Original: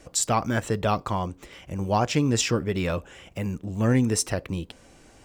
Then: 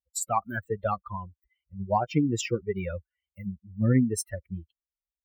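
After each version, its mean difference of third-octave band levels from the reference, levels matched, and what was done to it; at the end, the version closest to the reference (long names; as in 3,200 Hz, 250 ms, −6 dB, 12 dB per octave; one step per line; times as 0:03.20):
16.0 dB: spectral dynamics exaggerated over time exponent 3
high-pass filter 70 Hz
parametric band 4,800 Hz −11 dB 1.4 octaves
level +3 dB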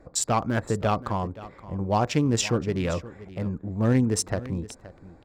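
4.5 dB: adaptive Wiener filter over 15 samples
high-shelf EQ 9,000 Hz −3.5 dB
on a send: single-tap delay 523 ms −17 dB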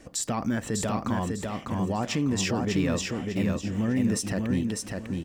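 7.0 dB: hollow resonant body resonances 230/1,800 Hz, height 8 dB, ringing for 25 ms
brickwall limiter −17 dBFS, peak gain reduction 10 dB
repeating echo 600 ms, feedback 30%, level −3.5 dB
level −2 dB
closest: second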